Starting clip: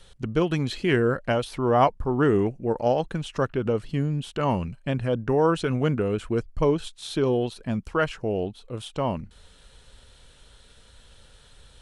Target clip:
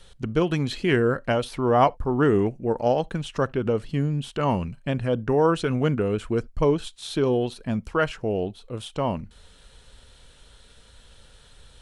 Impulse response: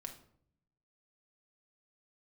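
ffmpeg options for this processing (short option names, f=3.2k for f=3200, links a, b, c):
-filter_complex "[0:a]asplit=2[a][b];[1:a]atrim=start_sample=2205,atrim=end_sample=3528[c];[b][c]afir=irnorm=-1:irlink=0,volume=-14.5dB[d];[a][d]amix=inputs=2:normalize=0"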